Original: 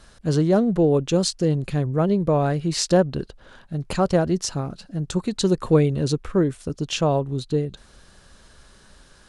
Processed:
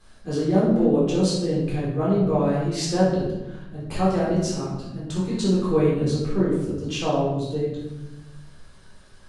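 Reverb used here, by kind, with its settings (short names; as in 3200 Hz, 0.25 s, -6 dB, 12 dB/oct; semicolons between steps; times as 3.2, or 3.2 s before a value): shoebox room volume 400 m³, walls mixed, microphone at 3.8 m; gain -12 dB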